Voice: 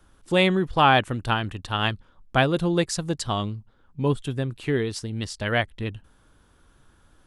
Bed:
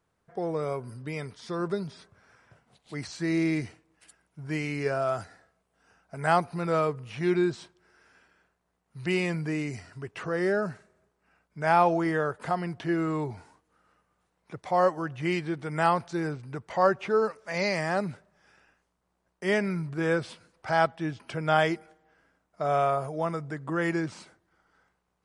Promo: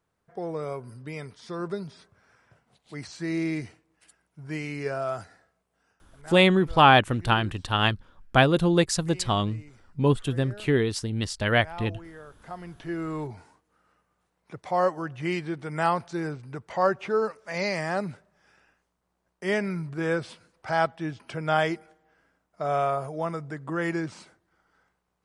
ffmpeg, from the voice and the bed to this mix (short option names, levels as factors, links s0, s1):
-filter_complex "[0:a]adelay=6000,volume=1.19[s0];[1:a]volume=5.96,afade=t=out:st=5.75:d=0.29:silence=0.158489,afade=t=in:st=12.3:d=1.16:silence=0.133352[s1];[s0][s1]amix=inputs=2:normalize=0"